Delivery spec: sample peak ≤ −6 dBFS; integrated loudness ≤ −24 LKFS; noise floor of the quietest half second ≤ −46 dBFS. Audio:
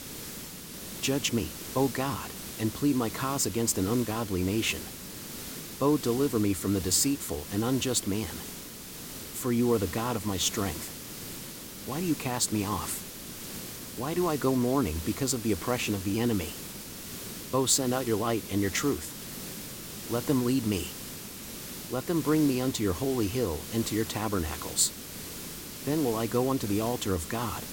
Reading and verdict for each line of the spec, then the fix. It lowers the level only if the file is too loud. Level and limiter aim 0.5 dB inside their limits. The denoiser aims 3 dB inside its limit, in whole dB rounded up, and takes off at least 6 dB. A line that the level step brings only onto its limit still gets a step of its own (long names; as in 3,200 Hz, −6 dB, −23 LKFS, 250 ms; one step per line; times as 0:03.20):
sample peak −10.0 dBFS: in spec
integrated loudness −29.5 LKFS: in spec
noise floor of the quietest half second −42 dBFS: out of spec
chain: broadband denoise 7 dB, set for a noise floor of −42 dBFS